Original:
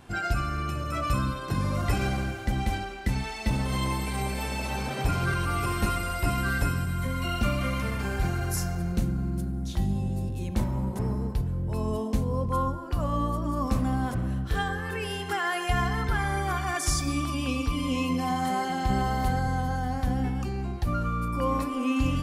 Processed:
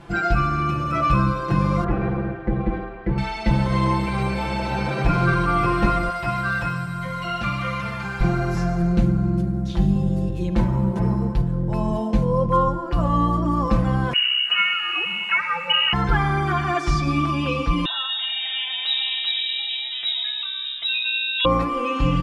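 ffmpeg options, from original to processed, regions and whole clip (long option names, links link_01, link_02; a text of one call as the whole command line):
ffmpeg -i in.wav -filter_complex "[0:a]asettb=1/sr,asplit=3[link_01][link_02][link_03];[link_01]atrim=end=1.844[link_04];[link_02]atrim=start=1.84:end=3.18,asetpts=PTS-STARTPTS,afade=type=in:duration=0.004:curve=qsin,afade=type=out:start_time=1.336:duration=0.004:curve=qsin,lowpass=1400,tremolo=f=280:d=0.75[link_05];[link_03]atrim=start=3.176[link_06];[link_04][link_05]acrossfade=duration=0.004:curve1=hsin:curve2=qsin[link_07];[link_07][link_06]acrossfade=duration=0.004:curve1=qsin:curve2=hsin,asettb=1/sr,asplit=3[link_08][link_09][link_10];[link_08]atrim=end=6.104[link_11];[link_09]atrim=start=6.1:end=8.21,asetpts=PTS-STARTPTS,afade=type=in:duration=0.004:curve=qsin,afade=type=out:start_time=2.106:duration=0.004:curve=qsin,highpass=110,equalizer=frequency=320:width=0.71:gain=-12[link_12];[link_10]atrim=start=8.206[link_13];[link_11][link_12]acrossfade=duration=0.004:curve1=hsin:curve2=qsin[link_14];[link_14][link_13]acrossfade=duration=0.004:curve1=qsin:curve2=hsin,asettb=1/sr,asplit=3[link_15][link_16][link_17];[link_15]atrim=end=14.134[link_18];[link_16]atrim=start=14.13:end=15.93,asetpts=PTS-STARTPTS,afade=type=in:duration=0.004:curve=qsin,afade=type=out:start_time=1.796:duration=0.004:curve=qsin,lowpass=frequency=2600:width_type=q:width=0.5098,lowpass=frequency=2600:width_type=q:width=0.6013,lowpass=frequency=2600:width_type=q:width=0.9,lowpass=frequency=2600:width_type=q:width=2.563,afreqshift=-3000,aemphasis=mode=production:type=bsi,aeval=exprs='sgn(val(0))*max(abs(val(0))-0.00282,0)':channel_layout=same[link_19];[link_17]atrim=start=15.926[link_20];[link_18][link_19]acrossfade=duration=0.004:curve1=hsin:curve2=qsin[link_21];[link_21][link_20]acrossfade=duration=0.004:curve1=qsin:curve2=hsin,asettb=1/sr,asplit=3[link_22][link_23][link_24];[link_22]atrim=end=17.854[link_25];[link_23]atrim=start=17.85:end=21.45,asetpts=PTS-STARTPTS,afade=type=in:duration=0.004:curve=qsin,afade=type=out:start_time=3.596:duration=0.004:curve=qsin,acrossover=split=3000[link_26][link_27];[link_27]acompressor=threshold=-57dB:ratio=4:attack=1:release=60[link_28];[link_26][link_28]amix=inputs=2:normalize=0,lowpass=frequency=3300:width_type=q:width=0.5098,lowpass=frequency=3300:width_type=q:width=0.6013,lowpass=frequency=3300:width_type=q:width=0.9,lowpass=frequency=3300:width_type=q:width=2.563,afreqshift=-3900[link_29];[link_24]atrim=start=21.446[link_30];[link_25][link_29]acrossfade=duration=0.004:curve1=hsin:curve2=qsin[link_31];[link_31][link_30]acrossfade=duration=0.004:curve1=qsin:curve2=hsin,acrossover=split=4800[link_32][link_33];[link_33]acompressor=threshold=-52dB:ratio=4:attack=1:release=60[link_34];[link_32][link_34]amix=inputs=2:normalize=0,aemphasis=mode=reproduction:type=50fm,aecho=1:1:5.9:0.9,volume=5.5dB" out.wav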